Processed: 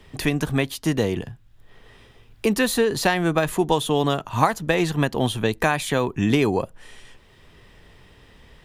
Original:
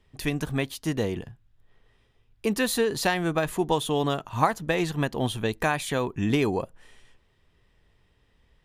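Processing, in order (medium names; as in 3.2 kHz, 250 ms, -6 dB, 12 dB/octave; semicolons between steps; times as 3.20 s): three bands compressed up and down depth 40%; trim +4.5 dB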